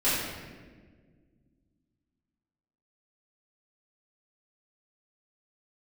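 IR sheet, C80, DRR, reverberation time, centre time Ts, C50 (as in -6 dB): 1.5 dB, -13.5 dB, 1.6 s, 91 ms, -1.0 dB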